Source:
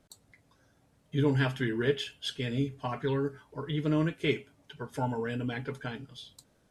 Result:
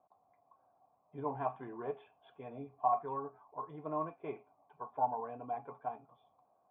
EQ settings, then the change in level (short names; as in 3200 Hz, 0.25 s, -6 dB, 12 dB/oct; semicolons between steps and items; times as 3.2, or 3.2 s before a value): vocal tract filter a; HPF 200 Hz 6 dB/oct; air absorption 65 m; +12.0 dB